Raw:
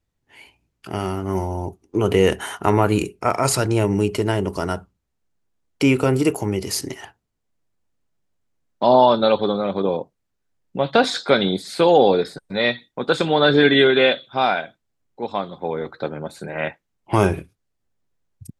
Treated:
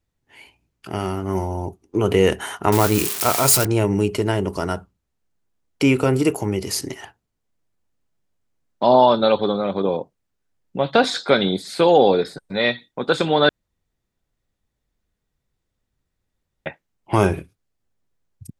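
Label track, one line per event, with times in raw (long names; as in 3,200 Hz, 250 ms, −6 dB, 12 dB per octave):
2.720000	3.650000	spike at every zero crossing of −11 dBFS
13.490000	16.660000	fill with room tone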